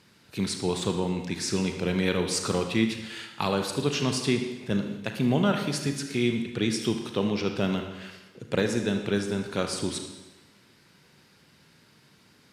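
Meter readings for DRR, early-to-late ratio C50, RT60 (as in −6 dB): 4.5 dB, 6.0 dB, 1.1 s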